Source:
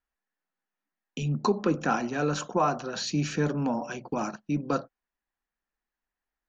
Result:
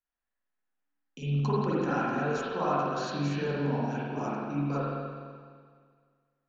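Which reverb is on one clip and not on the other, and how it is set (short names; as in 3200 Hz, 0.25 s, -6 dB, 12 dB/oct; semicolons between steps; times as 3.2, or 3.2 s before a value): spring tank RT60 1.9 s, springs 42/49 ms, chirp 45 ms, DRR -9.5 dB; gain -11.5 dB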